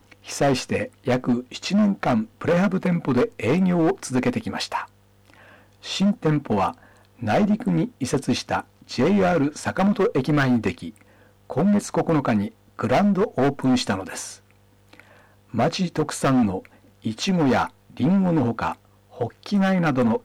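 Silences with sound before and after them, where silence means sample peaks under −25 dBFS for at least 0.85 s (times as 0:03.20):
0:04.82–0:05.87
0:14.25–0:15.54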